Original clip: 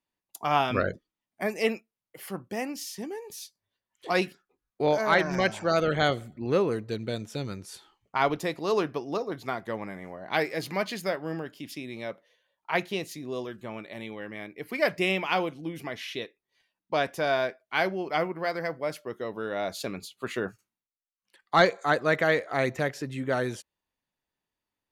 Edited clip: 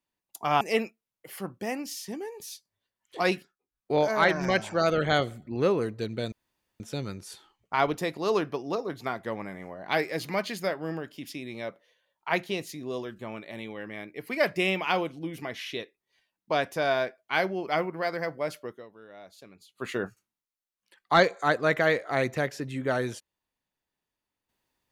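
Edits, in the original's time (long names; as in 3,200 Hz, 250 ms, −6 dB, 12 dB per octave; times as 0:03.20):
0:00.61–0:01.51: remove
0:04.24–0:04.81: duck −13.5 dB, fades 0.26 s
0:07.22: splice in room tone 0.48 s
0:19.05–0:20.28: duck −17 dB, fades 0.31 s quadratic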